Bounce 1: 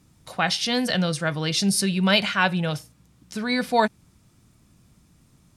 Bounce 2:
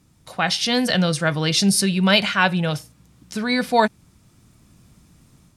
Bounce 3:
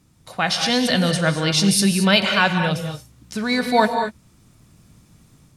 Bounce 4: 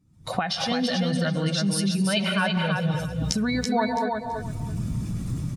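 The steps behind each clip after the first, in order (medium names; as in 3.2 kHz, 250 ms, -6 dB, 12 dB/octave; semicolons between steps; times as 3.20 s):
level rider gain up to 5 dB
gated-style reverb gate 250 ms rising, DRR 6 dB
spectral contrast enhancement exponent 1.5; recorder AGC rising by 58 dB/s; on a send: feedback delay 331 ms, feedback 20%, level -4.5 dB; on the sum: trim -8.5 dB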